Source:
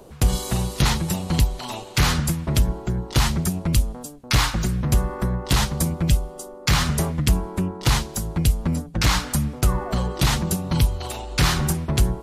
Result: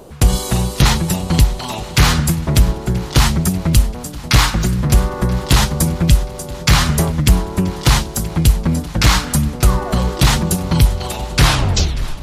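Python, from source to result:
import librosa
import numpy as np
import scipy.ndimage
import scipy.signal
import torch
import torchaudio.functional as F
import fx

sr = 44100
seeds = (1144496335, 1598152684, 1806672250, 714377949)

y = fx.tape_stop_end(x, sr, length_s=0.82)
y = fx.vibrato(y, sr, rate_hz=3.2, depth_cents=21.0)
y = fx.echo_swing(y, sr, ms=980, ratio=1.5, feedback_pct=48, wet_db=-18.5)
y = y * librosa.db_to_amplitude(6.5)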